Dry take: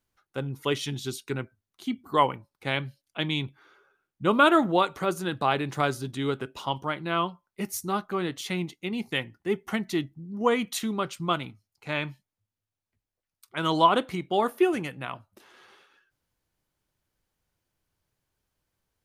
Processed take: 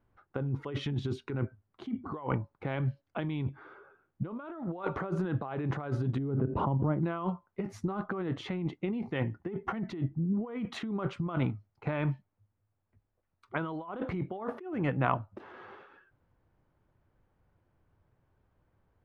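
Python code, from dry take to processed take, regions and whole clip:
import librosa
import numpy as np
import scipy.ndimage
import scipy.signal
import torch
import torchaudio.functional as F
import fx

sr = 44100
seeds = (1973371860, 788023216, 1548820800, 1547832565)

y = fx.chain(x, sr, fx.bandpass_q(hz=140.0, q=0.72),
    fx.pre_swell(db_per_s=57.0), at=(6.18, 7.03))
y = scipy.signal.sosfilt(scipy.signal.butter(2, 1300.0, 'lowpass', fs=sr, output='sos'), y)
y = fx.peak_eq(y, sr, hz=98.0, db=4.5, octaves=0.68)
y = fx.over_compress(y, sr, threshold_db=-36.0, ratio=-1.0)
y = y * librosa.db_to_amplitude(2.5)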